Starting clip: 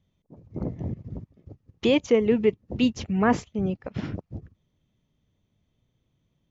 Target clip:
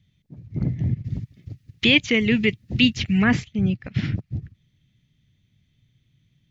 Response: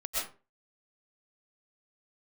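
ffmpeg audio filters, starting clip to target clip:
-filter_complex "[0:a]asplit=3[a][b][c];[a]afade=t=out:st=1.04:d=0.02[d];[b]highshelf=f=2.5k:g=11,afade=t=in:st=1.04:d=0.02,afade=t=out:st=3.23:d=0.02[e];[c]afade=t=in:st=3.23:d=0.02[f];[d][e][f]amix=inputs=3:normalize=0,acrossover=split=3400[g][h];[h]acompressor=threshold=-44dB:ratio=4:attack=1:release=60[i];[g][i]amix=inputs=2:normalize=0,equalizer=f=125:t=o:w=1:g=9,equalizer=f=500:t=o:w=1:g=-9,equalizer=f=1k:t=o:w=1:g=-10,equalizer=f=2k:t=o:w=1:g=9,equalizer=f=4k:t=o:w=1:g=6,volume=3dB"

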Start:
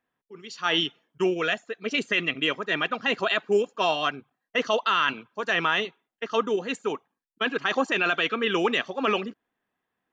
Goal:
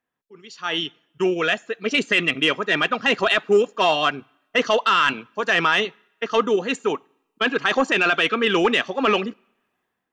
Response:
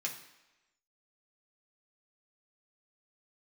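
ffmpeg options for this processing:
-filter_complex "[0:a]dynaudnorm=f=820:g=3:m=11.5dB,asoftclip=type=tanh:threshold=-4.5dB,asplit=2[a][b];[1:a]atrim=start_sample=2205[c];[b][c]afir=irnorm=-1:irlink=0,volume=-24dB[d];[a][d]amix=inputs=2:normalize=0,volume=-2.5dB"

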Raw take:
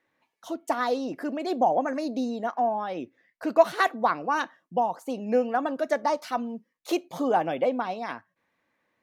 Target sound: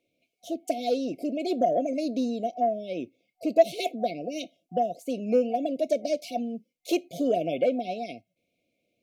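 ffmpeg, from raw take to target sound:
-filter_complex "[0:a]afftfilt=real='re*(1-between(b*sr/4096,740,2100))':imag='im*(1-between(b*sr/4096,740,2100))':win_size=4096:overlap=0.75,asplit=2[a][b];[b]asoftclip=type=tanh:threshold=-15.5dB,volume=-5.5dB[c];[a][c]amix=inputs=2:normalize=0,volume=-2.5dB"

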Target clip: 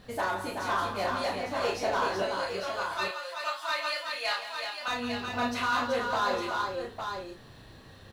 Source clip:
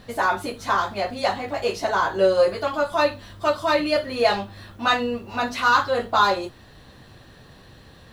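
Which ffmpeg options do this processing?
-filter_complex "[0:a]asettb=1/sr,asplit=3[a][b][c];[a]atrim=end=2.224[d];[b]atrim=start=2.22:end=4.88,asetpts=PTS-STARTPTS,afade=t=in:d=0.004:c=qsin,afade=t=out:st=2.656:d=0.004:c=qsin,highpass=1.3k[e];[c]atrim=start=4.876[f];[d][e]acrossfade=d=0.004:c1=hsin:c2=qsin[g];[g][f]acrossfade=d=0.004:c1=qsin:c2=hsin,alimiter=limit=-12.5dB:level=0:latency=1:release=374,volume=18dB,asoftclip=hard,volume=-18dB,asplit=2[h][i];[i]adelay=32,volume=-5dB[j];[h][j]amix=inputs=2:normalize=0,aecho=1:1:41|169|377|854:0.266|0.282|0.531|0.473,volume=-6.5dB"

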